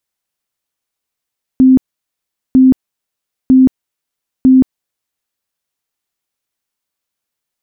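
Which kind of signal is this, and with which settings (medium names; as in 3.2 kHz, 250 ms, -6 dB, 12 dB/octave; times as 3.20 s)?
tone bursts 260 Hz, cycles 45, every 0.95 s, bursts 4, -3 dBFS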